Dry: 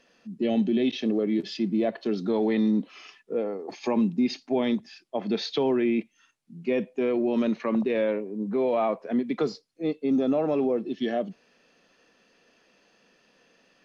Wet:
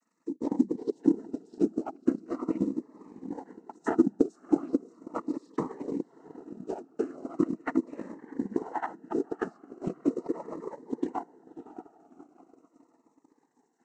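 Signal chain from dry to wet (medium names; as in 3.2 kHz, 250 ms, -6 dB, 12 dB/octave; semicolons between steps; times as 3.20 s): pitch shift switched off and on +3.5 st, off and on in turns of 246 ms; high-order bell 3.1 kHz -12.5 dB; transient shaper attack +6 dB, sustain -9 dB; modulation noise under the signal 33 dB; static phaser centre 1.2 kHz, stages 4; echo that smears into a reverb 610 ms, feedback 42%, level -12 dB; noise-vocoded speech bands 12; frequency shift +41 Hz; transient shaper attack +11 dB, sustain -4 dB; Shepard-style phaser falling 0.39 Hz; trim -6 dB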